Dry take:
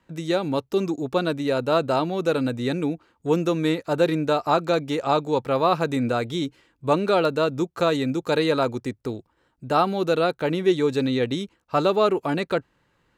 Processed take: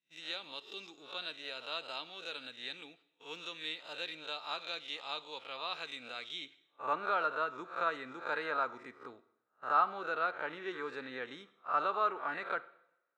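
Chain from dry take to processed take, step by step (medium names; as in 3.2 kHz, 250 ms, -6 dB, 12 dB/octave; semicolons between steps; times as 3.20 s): reverse spectral sustain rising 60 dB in 0.39 s; gate -34 dBFS, range -20 dB; band-pass sweep 3.2 kHz -> 1.4 kHz, 6.27–6.81 s; two-slope reverb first 0.71 s, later 2.1 s, from -26 dB, DRR 14 dB; trim -4.5 dB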